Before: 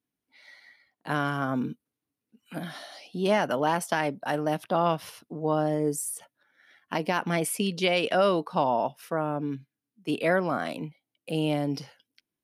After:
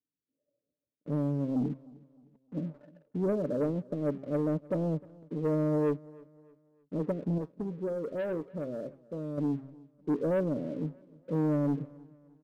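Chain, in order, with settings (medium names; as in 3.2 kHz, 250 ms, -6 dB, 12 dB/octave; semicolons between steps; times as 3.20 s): de-esser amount 95%; steep low-pass 590 Hz 96 dB/octave; comb 6.9 ms, depth 33%; de-hum 134.3 Hz, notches 3; waveshaping leveller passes 2; 7.38–9.38 s: feedback comb 74 Hz, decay 0.18 s, harmonics odd, mix 60%; feedback delay 307 ms, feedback 39%, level -23 dB; trim -6.5 dB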